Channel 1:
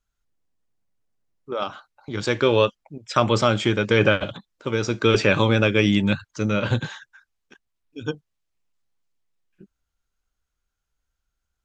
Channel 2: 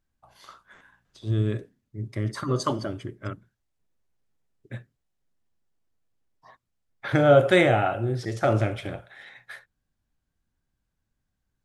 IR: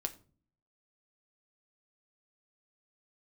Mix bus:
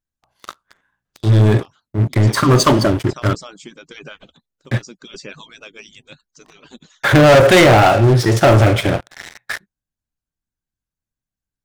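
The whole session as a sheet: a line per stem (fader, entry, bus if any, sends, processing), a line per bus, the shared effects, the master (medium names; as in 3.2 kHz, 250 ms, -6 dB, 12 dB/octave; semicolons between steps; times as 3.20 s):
-16.5 dB, 0.00 s, no send, harmonic-percussive separation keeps percussive; tone controls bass +9 dB, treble +14 dB
0.0 dB, 0.00 s, no send, waveshaping leveller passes 5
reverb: none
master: none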